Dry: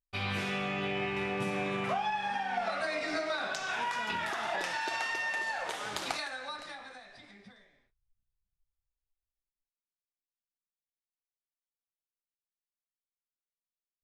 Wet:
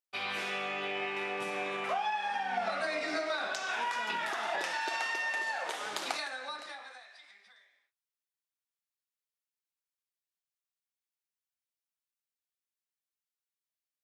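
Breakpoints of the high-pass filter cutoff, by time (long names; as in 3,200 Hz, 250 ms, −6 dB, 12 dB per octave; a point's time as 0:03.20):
0:02.32 410 Hz
0:02.66 100 Hz
0:03.27 270 Hz
0:06.57 270 Hz
0:07.19 1,100 Hz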